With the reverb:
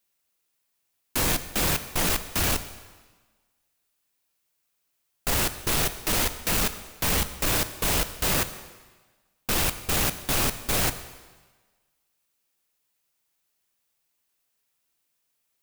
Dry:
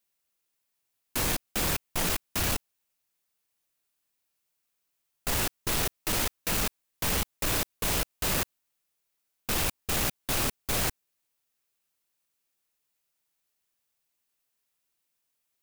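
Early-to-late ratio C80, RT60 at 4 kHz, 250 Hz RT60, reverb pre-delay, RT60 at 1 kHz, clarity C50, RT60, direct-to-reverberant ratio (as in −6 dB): 14.0 dB, 1.3 s, 1.3 s, 8 ms, 1.4 s, 12.5 dB, 1.3 s, 10.5 dB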